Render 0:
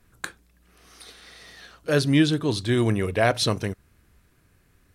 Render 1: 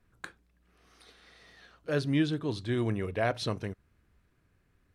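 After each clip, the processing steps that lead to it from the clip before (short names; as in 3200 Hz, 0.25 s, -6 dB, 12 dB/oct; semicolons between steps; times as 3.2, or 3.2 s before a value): high shelf 5500 Hz -12 dB; gain -8 dB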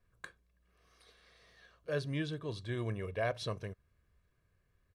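comb 1.8 ms, depth 50%; gain -7 dB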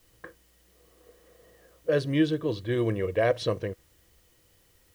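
low-pass opened by the level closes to 810 Hz, open at -32 dBFS; requantised 12-bit, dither triangular; small resonant body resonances 330/490/1900/3000 Hz, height 11 dB, ringing for 45 ms; gain +6.5 dB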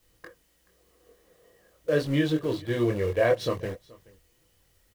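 in parallel at -4 dB: sample gate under -32.5 dBFS; on the sum: chorus voices 4, 0.93 Hz, delay 23 ms, depth 3 ms; echo 0.428 s -23.5 dB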